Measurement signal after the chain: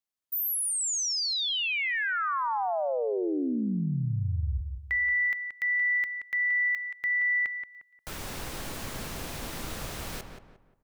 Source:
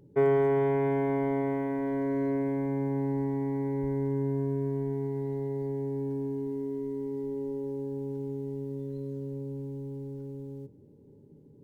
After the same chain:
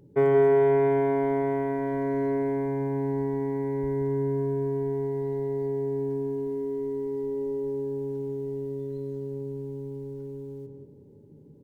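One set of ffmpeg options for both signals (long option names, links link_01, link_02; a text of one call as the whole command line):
ffmpeg -i in.wav -filter_complex "[0:a]asplit=2[link_01][link_02];[link_02]adelay=177,lowpass=frequency=2000:poles=1,volume=-6dB,asplit=2[link_03][link_04];[link_04]adelay=177,lowpass=frequency=2000:poles=1,volume=0.36,asplit=2[link_05][link_06];[link_06]adelay=177,lowpass=frequency=2000:poles=1,volume=0.36,asplit=2[link_07][link_08];[link_08]adelay=177,lowpass=frequency=2000:poles=1,volume=0.36[link_09];[link_01][link_03][link_05][link_07][link_09]amix=inputs=5:normalize=0,volume=2dB" out.wav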